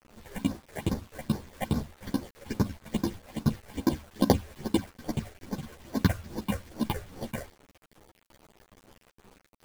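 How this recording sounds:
aliases and images of a low sample rate 1,300 Hz, jitter 0%
phaser sweep stages 6, 2.4 Hz, lowest notch 220–2,800 Hz
a quantiser's noise floor 8 bits, dither none
a shimmering, thickened sound

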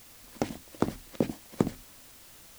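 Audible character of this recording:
a quantiser's noise floor 8 bits, dither triangular

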